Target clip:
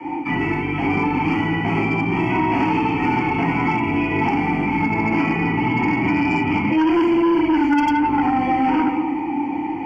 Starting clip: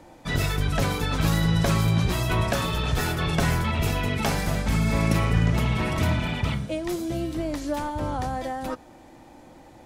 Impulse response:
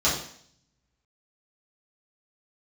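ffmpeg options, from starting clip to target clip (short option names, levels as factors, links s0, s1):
-filter_complex "[0:a]asplit=2[s0][s1];[s1]acrusher=bits=5:mix=0:aa=0.000001,volume=0.398[s2];[s0][s2]amix=inputs=2:normalize=0[s3];[1:a]atrim=start_sample=2205,asetrate=26901,aresample=44100[s4];[s3][s4]afir=irnorm=-1:irlink=0,areverse,acompressor=threshold=0.355:ratio=12,areverse,asplit=3[s5][s6][s7];[s5]bandpass=f=300:t=q:w=8,volume=1[s8];[s6]bandpass=f=870:t=q:w=8,volume=0.501[s9];[s7]bandpass=f=2240:t=q:w=8,volume=0.355[s10];[s8][s9][s10]amix=inputs=3:normalize=0,equalizer=f=1700:t=o:w=0.94:g=9.5,aeval=exprs='0.299*(cos(1*acos(clip(val(0)/0.299,-1,1)))-cos(1*PI/2))+0.075*(cos(5*acos(clip(val(0)/0.299,-1,1)))-cos(5*PI/2))':c=same,asuperstop=centerf=3800:order=8:qfactor=3.1,acrossover=split=100|480|1400[s11][s12][s13][s14];[s11]acompressor=threshold=0.00562:ratio=4[s15];[s12]acompressor=threshold=0.0562:ratio=4[s16];[s13]acompressor=threshold=0.0398:ratio=4[s17];[s14]acompressor=threshold=0.0178:ratio=4[s18];[s15][s16][s17][s18]amix=inputs=4:normalize=0,volume=2"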